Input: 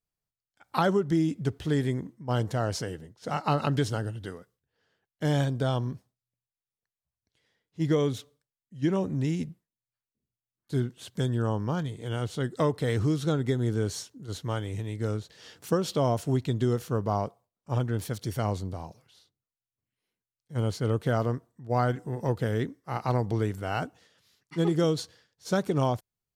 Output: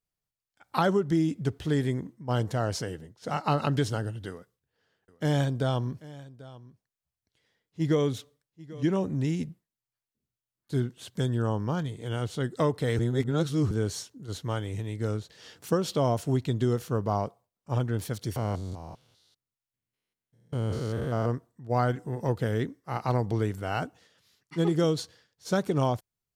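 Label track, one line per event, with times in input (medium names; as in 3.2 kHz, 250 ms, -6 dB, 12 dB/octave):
4.290000	8.830000	delay 790 ms -19 dB
12.990000	13.710000	reverse
18.360000	21.260000	spectrogram pixelated in time every 200 ms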